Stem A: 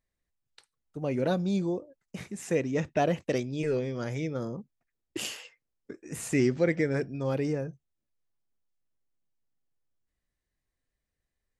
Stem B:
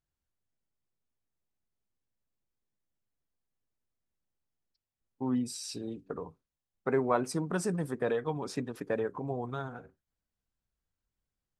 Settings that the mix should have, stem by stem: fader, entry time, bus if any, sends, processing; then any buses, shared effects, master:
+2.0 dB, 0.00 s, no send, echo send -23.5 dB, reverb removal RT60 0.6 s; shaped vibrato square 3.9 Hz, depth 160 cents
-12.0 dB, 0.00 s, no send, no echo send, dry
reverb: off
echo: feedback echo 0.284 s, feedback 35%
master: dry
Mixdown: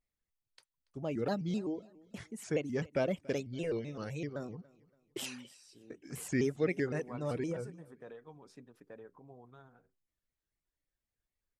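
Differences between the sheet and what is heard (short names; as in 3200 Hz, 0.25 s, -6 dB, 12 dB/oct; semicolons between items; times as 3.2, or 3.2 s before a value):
stem A +2.0 dB -> -5.5 dB; stem B -12.0 dB -> -19.5 dB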